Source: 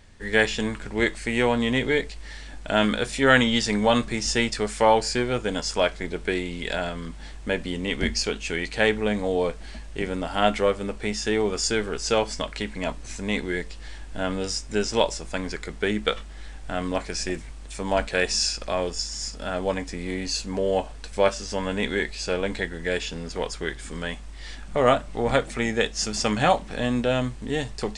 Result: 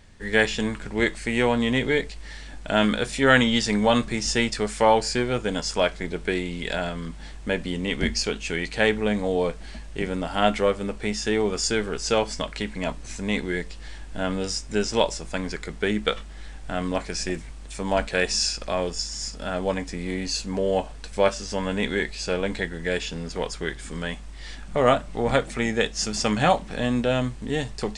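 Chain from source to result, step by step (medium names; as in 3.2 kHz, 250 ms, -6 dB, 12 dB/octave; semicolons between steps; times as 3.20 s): peaking EQ 170 Hz +3 dB 0.66 oct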